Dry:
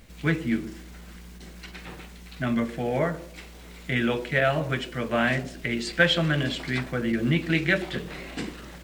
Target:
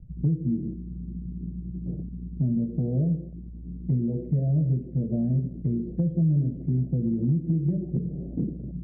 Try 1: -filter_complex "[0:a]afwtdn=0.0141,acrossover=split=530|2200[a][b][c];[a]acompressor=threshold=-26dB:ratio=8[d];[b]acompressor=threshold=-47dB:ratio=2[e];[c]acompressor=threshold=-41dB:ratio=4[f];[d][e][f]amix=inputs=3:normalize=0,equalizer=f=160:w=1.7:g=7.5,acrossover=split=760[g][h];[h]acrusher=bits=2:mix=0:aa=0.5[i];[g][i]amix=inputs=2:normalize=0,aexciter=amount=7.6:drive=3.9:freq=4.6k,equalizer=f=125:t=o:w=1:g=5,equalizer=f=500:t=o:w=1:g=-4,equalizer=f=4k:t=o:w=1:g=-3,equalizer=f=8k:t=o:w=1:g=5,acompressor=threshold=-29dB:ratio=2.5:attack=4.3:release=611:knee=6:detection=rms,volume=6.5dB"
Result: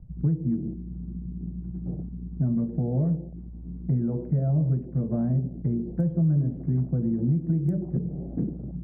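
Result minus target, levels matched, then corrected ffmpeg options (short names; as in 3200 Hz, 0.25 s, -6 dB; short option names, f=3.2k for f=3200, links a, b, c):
1000 Hz band +8.0 dB
-filter_complex "[0:a]afwtdn=0.0141,acrossover=split=530|2200[a][b][c];[a]acompressor=threshold=-26dB:ratio=8[d];[b]acompressor=threshold=-47dB:ratio=2[e];[c]acompressor=threshold=-41dB:ratio=4[f];[d][e][f]amix=inputs=3:normalize=0,asuperstop=centerf=1200:order=4:qfactor=0.6,equalizer=f=160:w=1.7:g=7.5,acrossover=split=760[g][h];[h]acrusher=bits=2:mix=0:aa=0.5[i];[g][i]amix=inputs=2:normalize=0,aexciter=amount=7.6:drive=3.9:freq=4.6k,equalizer=f=125:t=o:w=1:g=5,equalizer=f=500:t=o:w=1:g=-4,equalizer=f=4k:t=o:w=1:g=-3,equalizer=f=8k:t=o:w=1:g=5,acompressor=threshold=-29dB:ratio=2.5:attack=4.3:release=611:knee=6:detection=rms,volume=6.5dB"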